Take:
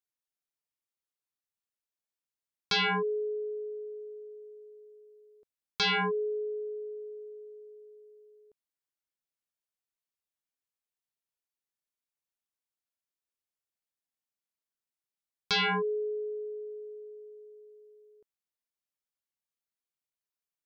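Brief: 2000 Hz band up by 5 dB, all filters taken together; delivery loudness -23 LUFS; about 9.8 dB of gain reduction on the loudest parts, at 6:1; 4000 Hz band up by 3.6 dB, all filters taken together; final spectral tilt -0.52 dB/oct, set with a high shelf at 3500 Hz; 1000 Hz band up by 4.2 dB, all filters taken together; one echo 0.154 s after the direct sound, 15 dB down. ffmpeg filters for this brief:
-af "equalizer=f=1k:t=o:g=4,equalizer=f=2k:t=o:g=5,highshelf=f=3.5k:g=-4,equalizer=f=4k:t=o:g=5,acompressor=threshold=-32dB:ratio=6,aecho=1:1:154:0.178,volume=13dB"

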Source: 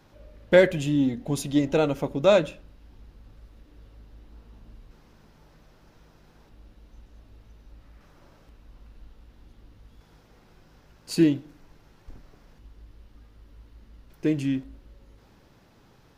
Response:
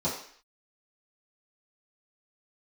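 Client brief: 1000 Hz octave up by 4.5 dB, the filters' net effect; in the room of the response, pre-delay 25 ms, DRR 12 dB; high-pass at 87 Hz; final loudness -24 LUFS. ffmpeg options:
-filter_complex "[0:a]highpass=87,equalizer=f=1k:t=o:g=6,asplit=2[a][b];[1:a]atrim=start_sample=2205,adelay=25[c];[b][c]afir=irnorm=-1:irlink=0,volume=-21dB[d];[a][d]amix=inputs=2:normalize=0,volume=-2dB"

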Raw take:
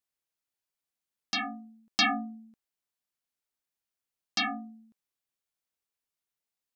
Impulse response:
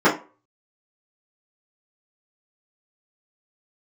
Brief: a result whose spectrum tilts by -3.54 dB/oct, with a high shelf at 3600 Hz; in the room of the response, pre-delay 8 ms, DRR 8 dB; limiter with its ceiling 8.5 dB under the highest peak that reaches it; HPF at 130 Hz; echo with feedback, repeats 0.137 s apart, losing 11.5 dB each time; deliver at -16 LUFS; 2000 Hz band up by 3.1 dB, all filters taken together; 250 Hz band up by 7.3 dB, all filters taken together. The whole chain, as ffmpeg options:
-filter_complex "[0:a]highpass=130,equalizer=f=250:t=o:g=8.5,equalizer=f=2k:t=o:g=5.5,highshelf=f=3.6k:g=-6,alimiter=limit=-21.5dB:level=0:latency=1,aecho=1:1:137|274|411:0.266|0.0718|0.0194,asplit=2[a][b];[1:a]atrim=start_sample=2205,adelay=8[c];[b][c]afir=irnorm=-1:irlink=0,volume=-31dB[d];[a][d]amix=inputs=2:normalize=0,volume=16dB"

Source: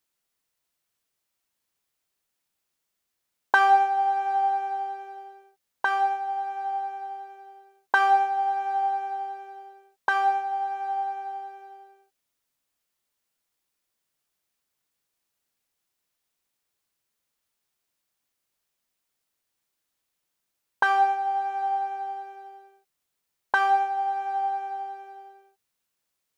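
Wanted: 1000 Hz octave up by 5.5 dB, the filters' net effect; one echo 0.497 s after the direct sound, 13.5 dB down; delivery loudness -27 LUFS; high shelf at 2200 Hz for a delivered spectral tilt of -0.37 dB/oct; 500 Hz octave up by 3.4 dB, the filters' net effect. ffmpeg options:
-af "equalizer=f=500:t=o:g=3.5,equalizer=f=1k:t=o:g=5,highshelf=f=2.2k:g=7.5,aecho=1:1:497:0.211,volume=-6.5dB"

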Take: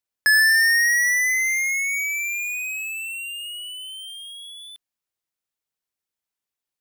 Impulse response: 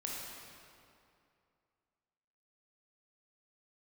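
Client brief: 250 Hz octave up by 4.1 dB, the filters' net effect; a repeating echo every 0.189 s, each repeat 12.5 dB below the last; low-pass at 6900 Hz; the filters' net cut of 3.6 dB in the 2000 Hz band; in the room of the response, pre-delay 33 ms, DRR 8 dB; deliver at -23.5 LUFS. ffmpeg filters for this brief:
-filter_complex "[0:a]lowpass=6.9k,equalizer=f=250:t=o:g=5.5,equalizer=f=2k:t=o:g=-4,aecho=1:1:189|378|567:0.237|0.0569|0.0137,asplit=2[a][b];[1:a]atrim=start_sample=2205,adelay=33[c];[b][c]afir=irnorm=-1:irlink=0,volume=-9.5dB[d];[a][d]amix=inputs=2:normalize=0,volume=-1.5dB"

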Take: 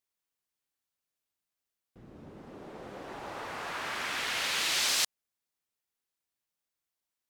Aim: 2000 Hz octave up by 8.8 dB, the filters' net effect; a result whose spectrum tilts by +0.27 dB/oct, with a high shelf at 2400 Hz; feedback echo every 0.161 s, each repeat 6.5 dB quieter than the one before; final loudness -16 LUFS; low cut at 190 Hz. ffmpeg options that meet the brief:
-af "highpass=190,equalizer=f=2k:t=o:g=8,highshelf=f=2.4k:g=5.5,aecho=1:1:161|322|483|644|805|966:0.473|0.222|0.105|0.0491|0.0231|0.0109,volume=7dB"

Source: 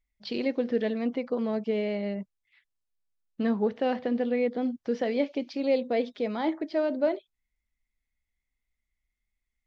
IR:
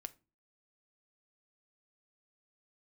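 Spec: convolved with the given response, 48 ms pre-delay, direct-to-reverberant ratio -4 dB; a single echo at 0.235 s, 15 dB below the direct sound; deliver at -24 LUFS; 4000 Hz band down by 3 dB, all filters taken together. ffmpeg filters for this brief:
-filter_complex "[0:a]equalizer=f=4k:t=o:g=-4,aecho=1:1:235:0.178,asplit=2[a][b];[1:a]atrim=start_sample=2205,adelay=48[c];[b][c]afir=irnorm=-1:irlink=0,volume=8.5dB[d];[a][d]amix=inputs=2:normalize=0,volume=-0.5dB"

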